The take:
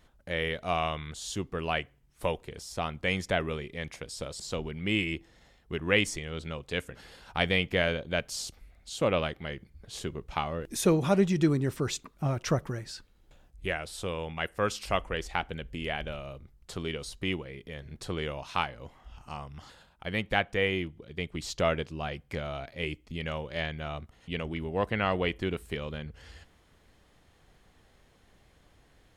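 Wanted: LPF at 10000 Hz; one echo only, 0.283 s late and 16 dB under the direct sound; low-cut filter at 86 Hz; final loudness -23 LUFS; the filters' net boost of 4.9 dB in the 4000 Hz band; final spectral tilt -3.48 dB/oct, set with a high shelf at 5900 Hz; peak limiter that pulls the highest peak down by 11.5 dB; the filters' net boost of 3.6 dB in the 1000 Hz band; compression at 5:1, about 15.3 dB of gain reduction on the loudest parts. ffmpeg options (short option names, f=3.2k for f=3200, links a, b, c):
-af "highpass=86,lowpass=10k,equalizer=f=1k:t=o:g=4.5,equalizer=f=4k:t=o:g=5,highshelf=f=5.9k:g=5.5,acompressor=threshold=-36dB:ratio=5,alimiter=level_in=3.5dB:limit=-24dB:level=0:latency=1,volume=-3.5dB,aecho=1:1:283:0.158,volume=18.5dB"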